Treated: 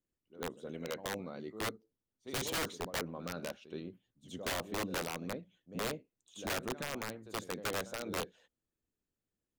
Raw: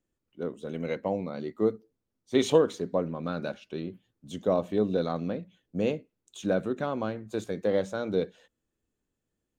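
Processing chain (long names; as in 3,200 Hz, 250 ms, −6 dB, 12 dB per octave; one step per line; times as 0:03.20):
backwards echo 74 ms −13 dB
harmonic and percussive parts rebalanced harmonic −6 dB
wrap-around overflow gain 24 dB
level −5.5 dB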